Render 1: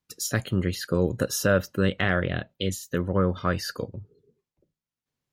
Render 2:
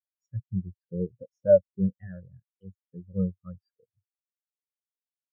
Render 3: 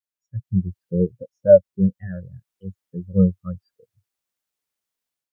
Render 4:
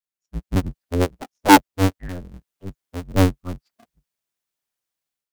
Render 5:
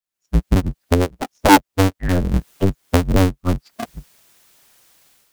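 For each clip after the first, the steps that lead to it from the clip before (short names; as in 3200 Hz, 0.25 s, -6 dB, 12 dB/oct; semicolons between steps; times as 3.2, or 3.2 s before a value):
spectral expander 4:1
AGC gain up to 11.5 dB
cycle switcher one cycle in 2, inverted
recorder AGC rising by 50 dB/s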